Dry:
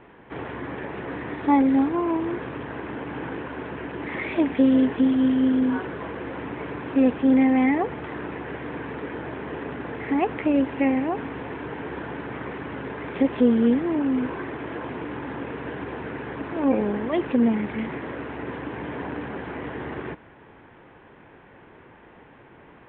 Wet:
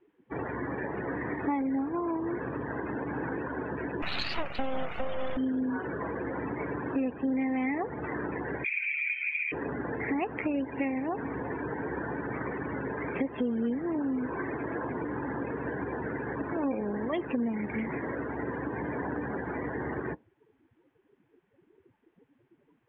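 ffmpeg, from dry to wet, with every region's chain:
-filter_complex "[0:a]asettb=1/sr,asplit=3[a][b][c];[a]atrim=end=4.024[d];[b]atrim=start=4.02:end=5.37,asetpts=PTS-STARTPTS,afade=t=in:d=0.004:c=qsin,afade=t=out:st=1.346:d=0.004:c=qsin,bass=f=250:g=-11,treble=f=4k:g=-7,acontrast=52,aeval=exprs='abs(val(0))':c=same[e];[c]atrim=start=5.366[f];[d][e]acrossfade=d=0.004:c1=hsin:c2=qsin[g];[g][f]acrossfade=d=0.004:c1=qsin:c2=hsin,asettb=1/sr,asplit=3[h][i][j];[h]atrim=end=8.644[k];[i]atrim=start=8.64:end=9.52,asetpts=PTS-STARTPTS,afade=t=in:d=0.004:c=qsin,afade=t=out:st=0.876:d=0.004:c=qsin,highpass=f=2.4k:t=q:w=12,aecho=1:1:0.9:0.39,atrim=end_sample=38808[l];[j]atrim=start=9.516[m];[k][l]acrossfade=d=0.004:c1=hsin:c2=qsin[n];[n][m]acrossfade=d=0.004:c1=qsin:c2=hsin,afftdn=nr=28:nf=-36,highshelf=f=2.7k:g=11,acompressor=threshold=-29dB:ratio=4"

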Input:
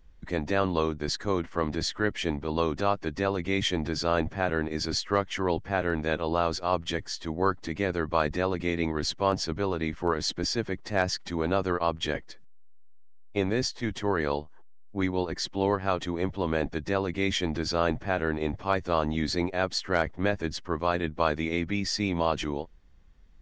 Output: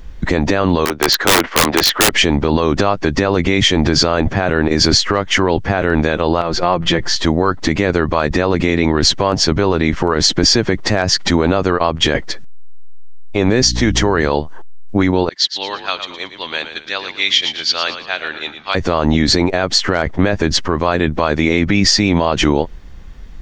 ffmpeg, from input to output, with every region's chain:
-filter_complex "[0:a]asettb=1/sr,asplit=3[a][b][c];[a]atrim=end=0.854[d];[b]atrim=start=0.85:end=2.13,asetpts=PTS-STARTPTS,afade=t=in:d=0.004:c=qsin,afade=t=out:st=1.276:d=0.004:c=qsin,acrossover=split=350 4600:gain=0.158 1 0.178[e][f][g];[e][f][g]amix=inputs=3:normalize=0,aeval=exprs='(mod(18.8*val(0)+1,2)-1)/18.8':c=same[h];[c]atrim=start=2.126[i];[d][h]acrossfade=d=0.004:c1=hsin:c2=qsin[j];[j][i]acrossfade=d=0.004:c1=qsin:c2=hsin,asettb=1/sr,asplit=3[k][l][m];[k]atrim=end=6.414[n];[l]atrim=start=6.41:end=7.16,asetpts=PTS-STARTPTS,afade=t=in:d=0.004:c=qsin,afade=t=out:st=0.746:d=0.004:c=qsin,aemphasis=mode=reproduction:type=50fm,aecho=1:1:5.7:0.5,atrim=end_sample=33075,acompressor=threshold=-33dB:ratio=3:attack=3.2:release=140:knee=1:detection=peak[o];[m]atrim=start=7.156[p];[n][o]acrossfade=d=0.004:c1=hsin:c2=qsin[q];[q][p]acrossfade=d=0.004:c1=qsin:c2=hsin,asettb=1/sr,asplit=3[r][s][t];[r]atrim=end=13.624[u];[s]atrim=start=13.62:end=14.29,asetpts=PTS-STARTPTS,afade=t=in:d=0.004:c=qsin,afade=t=out:st=0.666:d=0.004:c=qsin,equalizer=f=5.9k:w=2.5:g=6,aeval=exprs='val(0)+0.0112*(sin(2*PI*60*n/s)+sin(2*PI*2*60*n/s)/2+sin(2*PI*3*60*n/s)/3+sin(2*PI*4*60*n/s)/4+sin(2*PI*5*60*n/s)/5)':c=same[v];[t]atrim=start=14.286[w];[u][v]acrossfade=d=0.004:c1=hsin:c2=qsin[x];[x][w]acrossfade=d=0.004:c1=qsin:c2=hsin,asettb=1/sr,asplit=3[y][z][aa];[y]atrim=end=15.294[ab];[z]atrim=start=15.29:end=18.75,asetpts=PTS-STARTPTS,afade=t=in:d=0.004:c=qsin,afade=t=out:st=3.456:d=0.004:c=qsin,agate=range=-33dB:threshold=-30dB:ratio=3:release=100:detection=peak,bandpass=f=3.7k:t=q:w=2.2,asplit=5[ac][ad][ae][af][ag];[ad]adelay=114,afreqshift=-65,volume=-10dB[ah];[ae]adelay=228,afreqshift=-130,volume=-18dB[ai];[af]adelay=342,afreqshift=-195,volume=-25.9dB[aj];[ag]adelay=456,afreqshift=-260,volume=-33.9dB[ak];[ac][ah][ai][aj][ak]amix=inputs=5:normalize=0,atrim=end_sample=152586[al];[aa]atrim=start=18.746[am];[ab][al]acrossfade=d=0.004:c1=hsin:c2=qsin[an];[an][am]acrossfade=d=0.004:c1=qsin:c2=hsin,acompressor=threshold=-29dB:ratio=4,alimiter=level_in=23.5dB:limit=-1dB:release=50:level=0:latency=1,volume=-1dB"

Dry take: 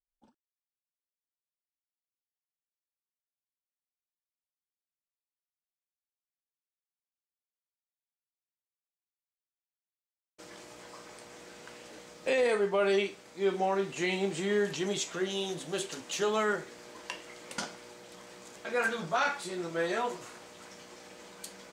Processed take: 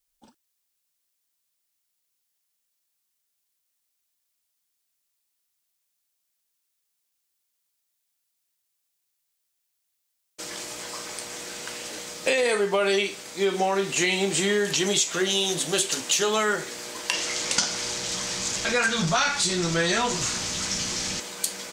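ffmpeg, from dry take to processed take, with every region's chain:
-filter_complex "[0:a]asettb=1/sr,asplit=3[a][b][c];[a]atrim=end=17.134[d];[b]atrim=start=17.13:end=21.2,asetpts=PTS-STARTPTS,afade=t=in:d=0.004:c=qsin,afade=t=out:st=4.066:d=0.004:c=qsin,aeval=exprs='val(0)+0.5*0.00562*sgn(val(0))':c=same,asubboost=boost=6.5:cutoff=190,lowpass=f=6.4k:t=q:w=1.6[e];[c]atrim=start=21.196[f];[d][e]acrossfade=d=0.004:c1=hsin:c2=qsin[g];[g][f]acrossfade=d=0.004:c1=qsin:c2=hsin,highshelf=f=2.7k:g=12,acompressor=threshold=-28dB:ratio=6,volume=8.5dB"

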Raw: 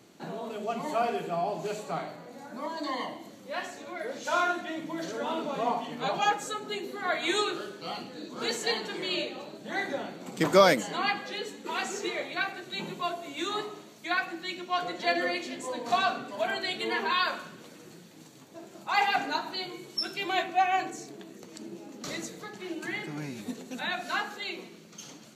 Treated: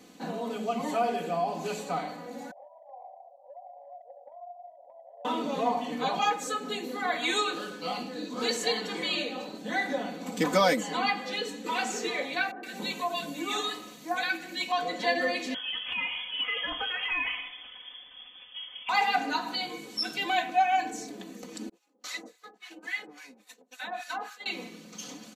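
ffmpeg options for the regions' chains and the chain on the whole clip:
-filter_complex "[0:a]asettb=1/sr,asplit=3[a][b][c];[a]atrim=end=2.514[d];[b]atrim=start=2.51:end=5.25,asetpts=PTS-STARTPTS,afade=t=in:d=0.004:c=qsin,afade=t=out:st=2.736:d=0.004:c=qsin,asuperpass=centerf=690:order=8:qfactor=2.5,aecho=1:1:794:0.119,atrim=end_sample=120834,acompressor=threshold=-48dB:ratio=5:attack=3.2:release=140:knee=1:detection=peak[e];[c]atrim=start=5.246[f];[d][e]acrossfade=d=0.004:c1=hsin:c2=qsin[g];[g][f]acrossfade=d=0.004:c1=qsin:c2=hsin,asettb=1/sr,asplit=3[h][i][j];[h]atrim=end=12.514[k];[i]atrim=start=12.51:end=14.72,asetpts=PTS-STARTPTS,afade=t=in:d=0.004:c=qsin,afade=t=out:st=2.206:d=0.004:c=qsin,highshelf=f=10k:g=8,acrossover=split=170|1300[l][m][n];[n]adelay=120[o];[l]adelay=400[p];[p][m][o]amix=inputs=3:normalize=0,atrim=end_sample=97461[q];[j]atrim=start=14.716[r];[k][q]acrossfade=d=0.004:c1=hsin:c2=qsin[s];[s][r]acrossfade=d=0.004:c1=qsin:c2=hsin,asettb=1/sr,asplit=3[t][u][v];[t]atrim=end=15.544[w];[u]atrim=start=15.54:end=18.89,asetpts=PTS-STARTPTS,afade=t=in:d=0.004:c=qsin,afade=t=out:st=3.346:d=0.004:c=qsin,lowpass=f=3.1k:t=q:w=0.5098,lowpass=f=3.1k:t=q:w=0.6013,lowpass=f=3.1k:t=q:w=0.9,lowpass=f=3.1k:t=q:w=2.563,afreqshift=-3600,acompressor=threshold=-30dB:ratio=4:attack=3.2:release=140:knee=1:detection=peak[x];[v]atrim=start=18.886[y];[w][x]acrossfade=d=0.004:c1=hsin:c2=qsin[z];[z][y]acrossfade=d=0.004:c1=qsin:c2=hsin,asettb=1/sr,asplit=3[aa][ab][ac];[aa]atrim=end=21.694[ad];[ab]atrim=start=21.69:end=24.46,asetpts=PTS-STARTPTS,afade=t=in:d=0.004:c=qsin,afade=t=out:st=2.766:d=0.004:c=qsin,highpass=460,agate=range=-33dB:threshold=-39dB:ratio=3:release=100:detection=peak,acrossover=split=1000[ae][af];[ae]aeval=exprs='val(0)*(1-1/2+1/2*cos(2*PI*3.6*n/s))':c=same[ag];[af]aeval=exprs='val(0)*(1-1/2-1/2*cos(2*PI*3.6*n/s))':c=same[ah];[ag][ah]amix=inputs=2:normalize=0[ai];[ac]atrim=start=24.456[aj];[ad][ai]acrossfade=d=0.004:c1=hsin:c2=qsin[ak];[ak][aj]acrossfade=d=0.004:c1=qsin:c2=hsin,bandreject=f=1.4k:w=14,aecho=1:1:4:0.84,acompressor=threshold=-31dB:ratio=1.5,volume=1.5dB"

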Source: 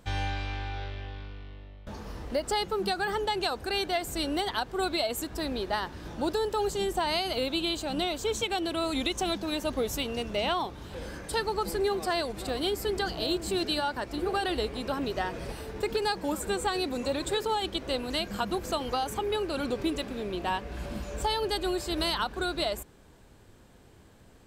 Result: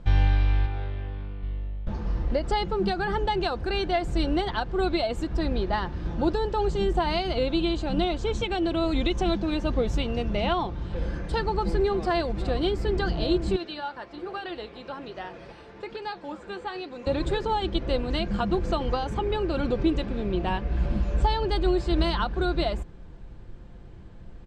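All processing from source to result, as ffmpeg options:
-filter_complex "[0:a]asettb=1/sr,asplit=3[a][b][c];[a]atrim=end=0.664[d];[b]atrim=start=0.66:end=1.43,asetpts=PTS-STARTPTS,afade=t=in:d=0.004:c=qsin,afade=t=out:st=0.766:d=0.004:c=qsin,highpass=f=110:p=1,highshelf=f=3k:g=-9[e];[c]atrim=start=1.426[f];[d][e]acrossfade=d=0.004:c1=hsin:c2=qsin[g];[g][f]acrossfade=d=0.004:c1=qsin:c2=hsin,asettb=1/sr,asplit=3[h][i][j];[h]atrim=end=13.564[k];[i]atrim=start=13.56:end=17.07,asetpts=PTS-STARTPTS,afade=t=in:d=0.004:c=qsin,afade=t=out:st=3.506:d=0.004:c=qsin,acrossover=split=5400[l][m];[m]acompressor=threshold=-54dB:ratio=4:attack=1:release=60[n];[l][n]amix=inputs=2:normalize=0,highpass=f=650:p=1,flanger=delay=6:depth=6.4:regen=-78:speed=1.2:shape=triangular[o];[j]atrim=start=17.066[p];[k][o]acrossfade=d=0.004:c1=hsin:c2=qsin[q];[q][p]acrossfade=d=0.004:c1=qsin:c2=hsin,lowpass=6.5k,aemphasis=mode=reproduction:type=bsi,aecho=1:1:5.8:0.32,volume=1.5dB"

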